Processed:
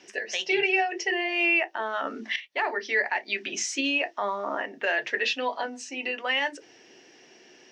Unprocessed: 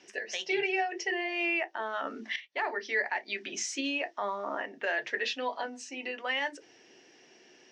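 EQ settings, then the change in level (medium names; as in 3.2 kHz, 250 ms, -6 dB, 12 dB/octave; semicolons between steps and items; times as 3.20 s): dynamic bell 2.7 kHz, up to +5 dB, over -48 dBFS, Q 6.9; +4.5 dB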